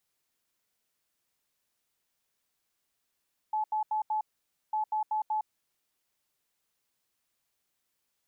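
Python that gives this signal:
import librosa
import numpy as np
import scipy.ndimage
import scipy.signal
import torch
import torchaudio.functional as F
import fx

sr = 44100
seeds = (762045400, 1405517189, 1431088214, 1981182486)

y = fx.beep_pattern(sr, wave='sine', hz=860.0, on_s=0.11, off_s=0.08, beeps=4, pause_s=0.52, groups=2, level_db=-26.5)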